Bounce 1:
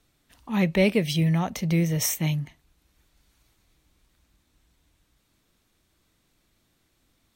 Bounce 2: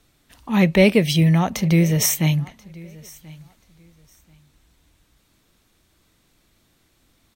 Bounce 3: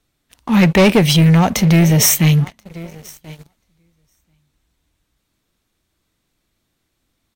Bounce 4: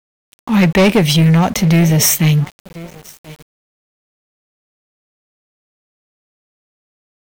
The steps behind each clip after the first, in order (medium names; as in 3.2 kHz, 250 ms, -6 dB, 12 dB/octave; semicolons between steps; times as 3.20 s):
feedback delay 1034 ms, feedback 21%, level -23 dB; trim +6.5 dB
waveshaping leveller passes 3; trim -2 dB
small samples zeroed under -34.5 dBFS